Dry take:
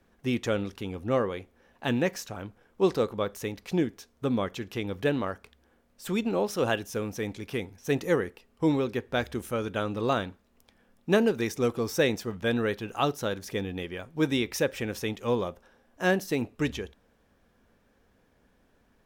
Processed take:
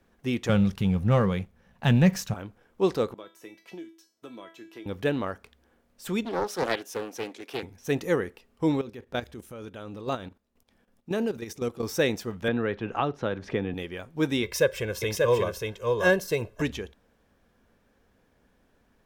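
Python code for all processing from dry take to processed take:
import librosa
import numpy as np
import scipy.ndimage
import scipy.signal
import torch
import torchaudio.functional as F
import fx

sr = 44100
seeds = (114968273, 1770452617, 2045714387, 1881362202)

y = fx.chain(x, sr, fx.low_shelf_res(hz=230.0, db=7.5, q=3.0),
    fx.leveller(passes=1), at=(0.49, 2.34))
y = fx.chain(y, sr, fx.highpass(hz=240.0, slope=12),
    fx.comb_fb(f0_hz=330.0, decay_s=0.31, harmonics='all', damping=0.0, mix_pct=90),
    fx.band_squash(depth_pct=100), at=(3.14, 4.86))
y = fx.chain(y, sr, fx.highpass(hz=290.0, slope=24),
    fx.doppler_dist(depth_ms=0.45), at=(6.25, 7.63))
y = fx.chain(y, sr, fx.level_steps(step_db=13),
    fx.peak_eq(hz=1600.0, db=-2.5, octaves=1.8), at=(8.81, 11.83))
y = fx.chain(y, sr, fx.lowpass(hz=2500.0, slope=12),
    fx.band_squash(depth_pct=100), at=(12.48, 13.74))
y = fx.chain(y, sr, fx.notch(hz=2400.0, q=22.0),
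    fx.comb(ms=1.9, depth=0.85),
    fx.echo_single(ms=587, db=-3.0), at=(14.43, 16.62))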